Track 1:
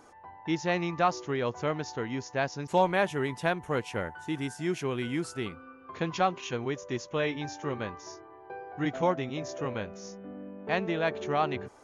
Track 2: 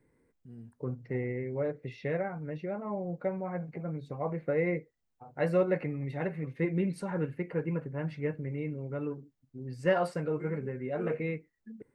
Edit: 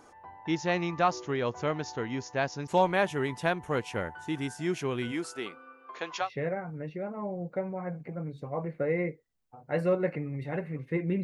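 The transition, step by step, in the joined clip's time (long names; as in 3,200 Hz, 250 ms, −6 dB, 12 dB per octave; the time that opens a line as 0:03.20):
track 1
0:05.11–0:06.30: high-pass filter 250 Hz → 710 Hz
0:06.25: continue with track 2 from 0:01.93, crossfade 0.10 s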